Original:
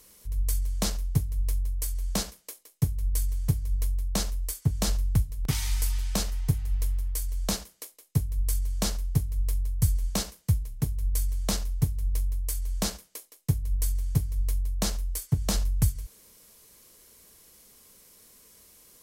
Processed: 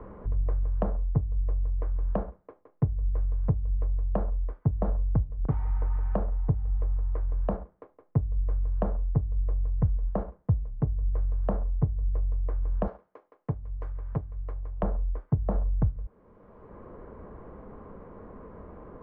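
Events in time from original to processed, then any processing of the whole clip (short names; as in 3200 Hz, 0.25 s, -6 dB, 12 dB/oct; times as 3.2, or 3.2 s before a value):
12.87–14.83 RIAA curve recording
whole clip: LPF 1200 Hz 24 dB/oct; dynamic EQ 560 Hz, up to +7 dB, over -49 dBFS, Q 1.2; three-band squash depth 70%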